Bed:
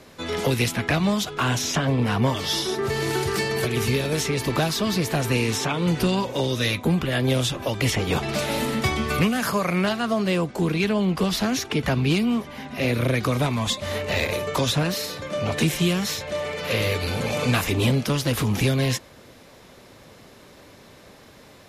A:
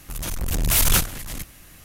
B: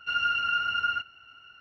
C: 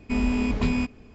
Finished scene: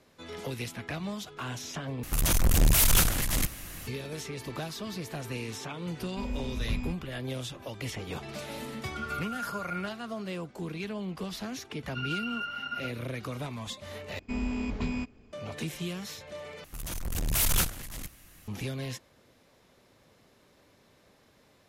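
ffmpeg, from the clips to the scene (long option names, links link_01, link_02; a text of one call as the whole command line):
ffmpeg -i bed.wav -i cue0.wav -i cue1.wav -i cue2.wav -filter_complex "[1:a]asplit=2[link_01][link_02];[3:a]asplit=2[link_03][link_04];[2:a]asplit=2[link_05][link_06];[0:a]volume=-14dB[link_07];[link_01]alimiter=level_in=19.5dB:limit=-1dB:release=50:level=0:latency=1[link_08];[link_03]asubboost=boost=12:cutoff=150[link_09];[link_05]lowpass=frequency=1100:width=0.5412,lowpass=frequency=1100:width=1.3066[link_10];[link_07]asplit=4[link_11][link_12][link_13][link_14];[link_11]atrim=end=2.034[link_15];[link_08]atrim=end=1.84,asetpts=PTS-STARTPTS,volume=-14.5dB[link_16];[link_12]atrim=start=3.866:end=14.194[link_17];[link_04]atrim=end=1.14,asetpts=PTS-STARTPTS,volume=-8dB[link_18];[link_13]atrim=start=15.326:end=16.644[link_19];[link_02]atrim=end=1.84,asetpts=PTS-STARTPTS,volume=-7.5dB[link_20];[link_14]atrim=start=18.476[link_21];[link_09]atrim=end=1.14,asetpts=PTS-STARTPTS,volume=-13.5dB,afade=type=in:duration=0.004:curve=hsin,afade=type=out:start_time=1.136:duration=0.004:curve=hsin,adelay=6070[link_22];[link_10]atrim=end=1.6,asetpts=PTS-STARTPTS,volume=-0.5dB,afade=type=in:duration=0.004:curve=hsin,afade=type=out:start_time=1.596:duration=0.004:curve=hsin,adelay=8870[link_23];[link_06]atrim=end=1.6,asetpts=PTS-STARTPTS,volume=-9dB,afade=type=in:duration=0.004:curve=hsin,afade=type=out:start_time=1.596:duration=0.004:curve=hsin,adelay=11880[link_24];[link_15][link_16]acrossfade=duration=0.004:curve1=hsin:curve2=hsin[link_25];[link_25][link_17]acrossfade=duration=0.004:curve1=hsin:curve2=hsin[link_26];[link_26][link_18]acrossfade=duration=0.004:curve1=hsin:curve2=hsin[link_27];[link_27][link_19]acrossfade=duration=0.004:curve1=hsin:curve2=hsin[link_28];[link_28][link_20]acrossfade=duration=0.004:curve1=hsin:curve2=hsin[link_29];[link_29][link_21]acrossfade=duration=0.004:curve1=hsin:curve2=hsin[link_30];[link_30][link_22][link_23][link_24]amix=inputs=4:normalize=0" out.wav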